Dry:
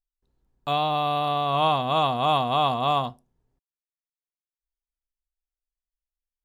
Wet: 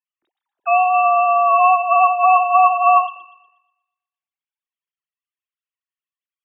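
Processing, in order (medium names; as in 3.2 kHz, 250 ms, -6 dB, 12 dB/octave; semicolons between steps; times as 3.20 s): formants replaced by sine waves; treble shelf 2.3 kHz +9 dB; feedback echo behind a high-pass 120 ms, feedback 43%, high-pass 1.7 kHz, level -10.5 dB; trim +8 dB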